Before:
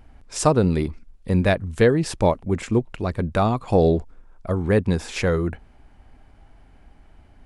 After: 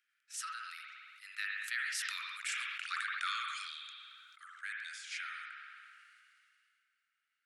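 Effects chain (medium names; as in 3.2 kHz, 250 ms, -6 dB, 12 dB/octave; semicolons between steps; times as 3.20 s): Doppler pass-by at 2.84 s, 19 m/s, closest 5.7 m; steep high-pass 1.3 kHz 96 dB/octave; peak limiter -30.5 dBFS, peak gain reduction 9 dB; spring tank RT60 1.2 s, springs 56 ms, chirp 70 ms, DRR 3 dB; decay stretcher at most 23 dB/s; trim +4 dB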